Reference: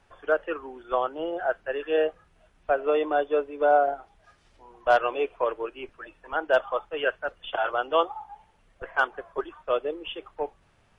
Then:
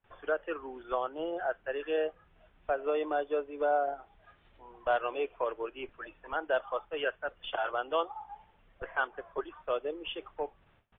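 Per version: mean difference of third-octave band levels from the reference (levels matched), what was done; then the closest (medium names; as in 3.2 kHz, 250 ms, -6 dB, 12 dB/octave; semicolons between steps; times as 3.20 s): 1.5 dB: gate with hold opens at -54 dBFS; compression 1.5:1, threshold -35 dBFS, peak gain reduction 7.5 dB; resampled via 8 kHz; trim -1.5 dB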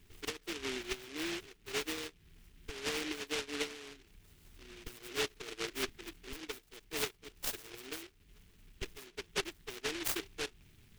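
18.0 dB: compression 16:1, threshold -33 dBFS, peak gain reduction 19 dB; brick-wall FIR band-stop 460–2700 Hz; delay time shaken by noise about 2.4 kHz, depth 0.37 ms; trim +4 dB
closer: first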